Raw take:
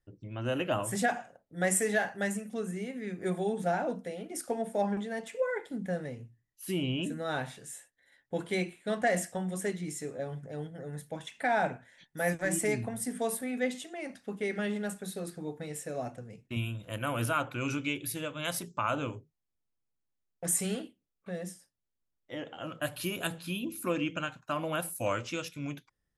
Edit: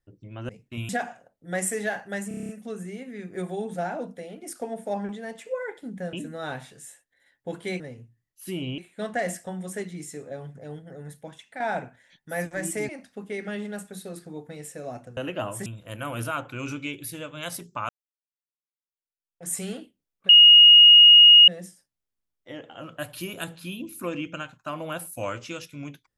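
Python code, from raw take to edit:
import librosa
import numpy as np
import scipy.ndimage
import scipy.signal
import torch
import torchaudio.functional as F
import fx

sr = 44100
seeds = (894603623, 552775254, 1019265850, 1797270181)

y = fx.edit(x, sr, fx.swap(start_s=0.49, length_s=0.49, other_s=16.28, other_length_s=0.4),
    fx.stutter(start_s=2.37, slice_s=0.03, count=8),
    fx.move(start_s=6.01, length_s=0.98, to_s=8.66),
    fx.fade_out_to(start_s=11.01, length_s=0.47, floor_db=-8.5),
    fx.cut(start_s=12.77, length_s=1.23),
    fx.fade_in_span(start_s=18.91, length_s=1.65, curve='exp'),
    fx.insert_tone(at_s=21.31, length_s=1.19, hz=2870.0, db=-8.0), tone=tone)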